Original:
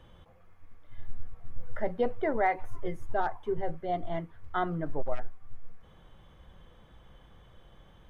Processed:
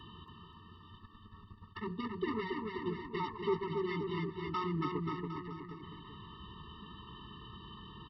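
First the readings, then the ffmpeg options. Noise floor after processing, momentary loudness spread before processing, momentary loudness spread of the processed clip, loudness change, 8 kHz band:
−57 dBFS, 22 LU, 20 LU, −6.5 dB, can't be measured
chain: -af "tiltshelf=frequency=760:gain=-4.5,alimiter=level_in=2dB:limit=-24dB:level=0:latency=1:release=431,volume=-2dB,asuperstop=centerf=2100:order=20:qfactor=4.1,equalizer=frequency=210:width_type=o:width=0.2:gain=5.5,aresample=11025,asoftclip=type=tanh:threshold=-37dB,aresample=44100,highpass=84,aecho=1:1:280|532|758.8|962.9|1147:0.631|0.398|0.251|0.158|0.1,afftfilt=real='re*eq(mod(floor(b*sr/1024/440),2),0)':imag='im*eq(mod(floor(b*sr/1024/440),2),0)':win_size=1024:overlap=0.75,volume=10dB"

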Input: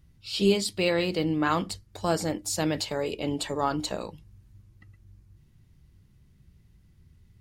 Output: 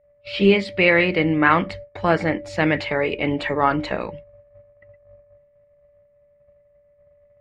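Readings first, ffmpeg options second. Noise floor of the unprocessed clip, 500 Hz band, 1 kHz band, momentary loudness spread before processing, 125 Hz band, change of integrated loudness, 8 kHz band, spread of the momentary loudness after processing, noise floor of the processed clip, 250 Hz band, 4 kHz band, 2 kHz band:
−60 dBFS, +7.0 dB, +9.0 dB, 10 LU, +6.5 dB, +8.0 dB, below −15 dB, 11 LU, −59 dBFS, +6.5 dB, +2.0 dB, +14.5 dB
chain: -af "aeval=exprs='val(0)+0.00794*sin(2*PI*580*n/s)':channel_layout=same,agate=range=-24dB:threshold=-42dB:ratio=16:detection=peak,lowpass=frequency=2100:width_type=q:width=3.9,volume=6.5dB"

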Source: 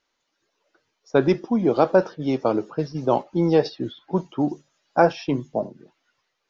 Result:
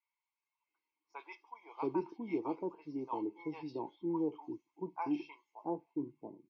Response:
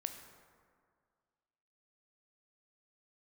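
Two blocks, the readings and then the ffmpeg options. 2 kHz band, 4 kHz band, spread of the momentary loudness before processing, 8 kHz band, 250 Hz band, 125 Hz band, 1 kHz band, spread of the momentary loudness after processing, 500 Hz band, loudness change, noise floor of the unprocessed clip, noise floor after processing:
−21.0 dB, below −20 dB, 10 LU, can't be measured, −14.5 dB, −23.5 dB, −16.0 dB, 15 LU, −20.0 dB, −17.0 dB, −76 dBFS, below −85 dBFS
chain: -filter_complex "[0:a]asplit=3[link_01][link_02][link_03];[link_01]bandpass=frequency=300:width_type=q:width=8,volume=0dB[link_04];[link_02]bandpass=frequency=870:width_type=q:width=8,volume=-6dB[link_05];[link_03]bandpass=frequency=2240:width_type=q:width=8,volume=-9dB[link_06];[link_04][link_05][link_06]amix=inputs=3:normalize=0,equalizer=frequency=210:width_type=o:width=2.5:gain=-5.5,bandreject=frequency=3700:width=16,aecho=1:1:1.9:0.61,acrossover=split=760|2800[link_07][link_08][link_09];[link_09]adelay=30[link_10];[link_07]adelay=680[link_11];[link_11][link_08][link_10]amix=inputs=3:normalize=0,volume=1dB"

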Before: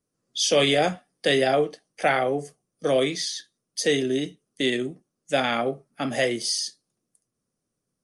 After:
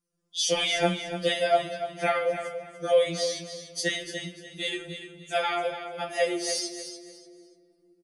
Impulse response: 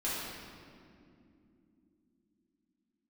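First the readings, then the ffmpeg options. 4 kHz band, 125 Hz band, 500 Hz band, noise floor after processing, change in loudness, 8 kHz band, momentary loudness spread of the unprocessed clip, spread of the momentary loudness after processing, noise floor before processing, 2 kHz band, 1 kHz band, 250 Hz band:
−3.0 dB, −5.0 dB, −3.0 dB, −67 dBFS, −3.5 dB, −2.5 dB, 11 LU, 13 LU, −82 dBFS, −3.5 dB, −2.0 dB, −8.0 dB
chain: -filter_complex "[0:a]aecho=1:1:293|586|879:0.316|0.0791|0.0198,asplit=2[link_01][link_02];[1:a]atrim=start_sample=2205[link_03];[link_02][link_03]afir=irnorm=-1:irlink=0,volume=-17dB[link_04];[link_01][link_04]amix=inputs=2:normalize=0,afftfilt=real='re*2.83*eq(mod(b,8),0)':imag='im*2.83*eq(mod(b,8),0)':win_size=2048:overlap=0.75,volume=-2dB"

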